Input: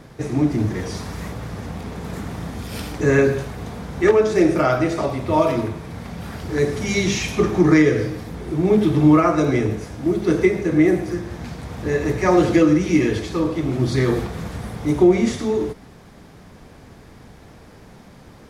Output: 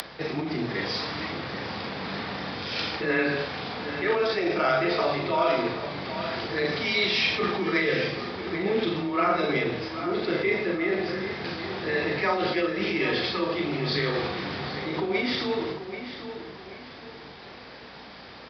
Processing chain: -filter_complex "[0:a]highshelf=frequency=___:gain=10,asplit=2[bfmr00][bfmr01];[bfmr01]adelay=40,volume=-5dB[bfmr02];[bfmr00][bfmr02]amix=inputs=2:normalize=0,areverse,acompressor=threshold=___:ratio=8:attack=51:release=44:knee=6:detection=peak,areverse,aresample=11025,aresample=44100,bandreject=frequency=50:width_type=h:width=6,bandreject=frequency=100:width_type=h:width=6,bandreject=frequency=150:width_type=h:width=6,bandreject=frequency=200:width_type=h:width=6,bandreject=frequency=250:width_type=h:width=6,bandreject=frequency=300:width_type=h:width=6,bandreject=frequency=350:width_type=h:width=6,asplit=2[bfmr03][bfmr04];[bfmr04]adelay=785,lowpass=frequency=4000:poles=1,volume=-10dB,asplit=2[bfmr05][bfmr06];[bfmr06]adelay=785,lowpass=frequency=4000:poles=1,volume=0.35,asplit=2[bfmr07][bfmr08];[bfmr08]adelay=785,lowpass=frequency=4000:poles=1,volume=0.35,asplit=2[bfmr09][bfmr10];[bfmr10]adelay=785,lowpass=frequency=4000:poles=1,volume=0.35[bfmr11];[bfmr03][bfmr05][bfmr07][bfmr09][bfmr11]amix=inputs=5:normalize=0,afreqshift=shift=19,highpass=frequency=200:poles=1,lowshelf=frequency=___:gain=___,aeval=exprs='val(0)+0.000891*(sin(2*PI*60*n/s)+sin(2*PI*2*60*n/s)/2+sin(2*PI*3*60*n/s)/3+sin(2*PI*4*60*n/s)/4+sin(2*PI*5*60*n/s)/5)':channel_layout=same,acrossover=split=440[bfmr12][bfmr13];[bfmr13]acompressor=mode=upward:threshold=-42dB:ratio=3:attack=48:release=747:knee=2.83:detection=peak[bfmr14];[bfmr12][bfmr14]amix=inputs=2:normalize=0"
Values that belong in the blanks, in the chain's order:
2200, -24dB, 390, -5